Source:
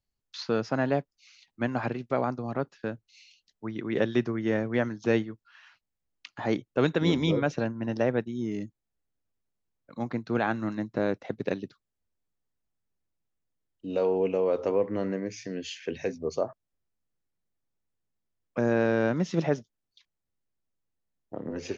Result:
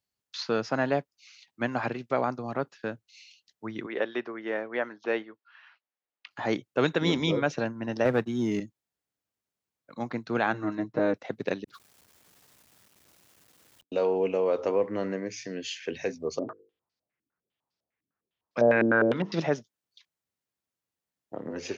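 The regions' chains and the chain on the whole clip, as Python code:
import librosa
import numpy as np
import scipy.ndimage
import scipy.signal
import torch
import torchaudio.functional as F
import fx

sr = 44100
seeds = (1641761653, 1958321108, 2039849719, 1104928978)

y = fx.chain(x, sr, fx.highpass(hz=420.0, slope=12),
    fx.air_absorb(metres=260.0), at=(3.86, 6.31))
y = fx.chain(y, sr, fx.low_shelf(hz=130.0, db=4.0),
    fx.leveller(passes=1),
    fx.band_squash(depth_pct=40), at=(8.05, 8.6))
y = fx.chain(y, sr, fx.high_shelf(hz=2100.0, db=-10.5),
    fx.comb(ms=6.5, depth=0.9), at=(10.53, 11.14))
y = fx.chain(y, sr, fx.law_mismatch(coded='mu'),
    fx.over_compress(threshold_db=-58.0, ratio=-0.5), at=(11.64, 13.92))
y = fx.chain(y, sr, fx.hum_notches(base_hz=50, count=10),
    fx.filter_held_lowpass(hz=9.9, low_hz=290.0, high_hz=4800.0), at=(16.39, 19.4))
y = scipy.signal.sosfilt(scipy.signal.butter(2, 86.0, 'highpass', fs=sr, output='sos'), y)
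y = fx.low_shelf(y, sr, hz=440.0, db=-6.5)
y = F.gain(torch.from_numpy(y), 3.0).numpy()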